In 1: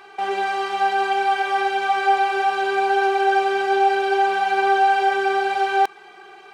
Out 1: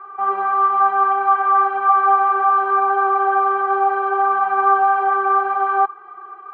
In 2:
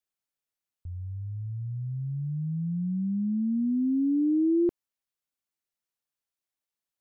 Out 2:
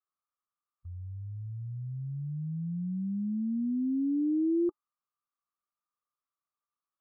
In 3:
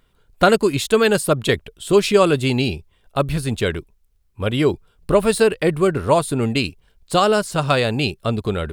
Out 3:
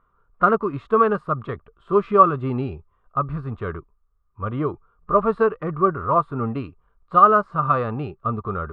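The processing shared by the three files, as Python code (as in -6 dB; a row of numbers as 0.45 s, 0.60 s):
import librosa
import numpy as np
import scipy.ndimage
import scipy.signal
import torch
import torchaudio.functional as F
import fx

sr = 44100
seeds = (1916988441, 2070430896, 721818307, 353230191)

y = fx.hpss(x, sr, part='percussive', gain_db=-9)
y = fx.lowpass_res(y, sr, hz=1200.0, q=14.0)
y = fx.notch(y, sr, hz=850.0, q=28.0)
y = y * 10.0 ** (-4.5 / 20.0)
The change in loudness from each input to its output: +3.0 LU, -4.0 LU, -2.0 LU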